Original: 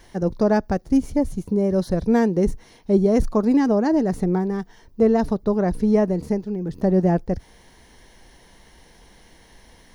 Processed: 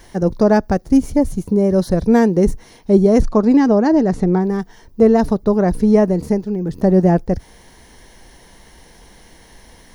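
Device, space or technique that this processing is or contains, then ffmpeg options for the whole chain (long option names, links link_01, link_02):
exciter from parts: -filter_complex "[0:a]asplit=3[link_01][link_02][link_03];[link_01]afade=type=out:start_time=3.2:duration=0.02[link_04];[link_02]lowpass=6300,afade=type=in:start_time=3.2:duration=0.02,afade=type=out:start_time=4.43:duration=0.02[link_05];[link_03]afade=type=in:start_time=4.43:duration=0.02[link_06];[link_04][link_05][link_06]amix=inputs=3:normalize=0,asplit=2[link_07][link_08];[link_08]highpass=3000,asoftclip=type=tanh:threshold=-32.5dB,highpass=frequency=4600:poles=1,volume=-7.5dB[link_09];[link_07][link_09]amix=inputs=2:normalize=0,volume=5.5dB"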